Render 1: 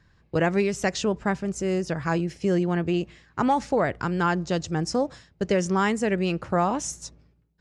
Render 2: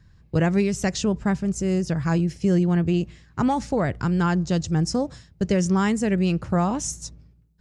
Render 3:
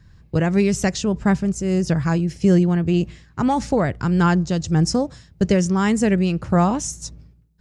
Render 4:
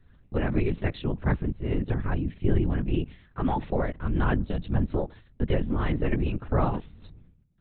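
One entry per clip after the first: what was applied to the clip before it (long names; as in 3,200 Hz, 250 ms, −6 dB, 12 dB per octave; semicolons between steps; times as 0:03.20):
bass and treble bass +11 dB, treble +6 dB; level −2.5 dB
shaped tremolo triangle 1.7 Hz, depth 45%; level +5.5 dB
linear-prediction vocoder at 8 kHz whisper; level −7 dB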